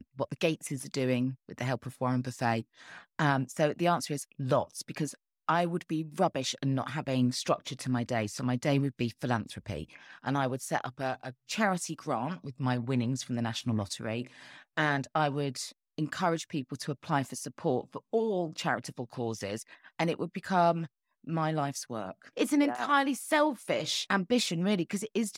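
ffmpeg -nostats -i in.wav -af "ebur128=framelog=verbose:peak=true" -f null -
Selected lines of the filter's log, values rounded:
Integrated loudness:
  I:         -31.6 LUFS
  Threshold: -41.7 LUFS
Loudness range:
  LRA:         3.8 LU
  Threshold: -51.9 LUFS
  LRA low:   -33.4 LUFS
  LRA high:  -29.6 LUFS
True peak:
  Peak:      -14.4 dBFS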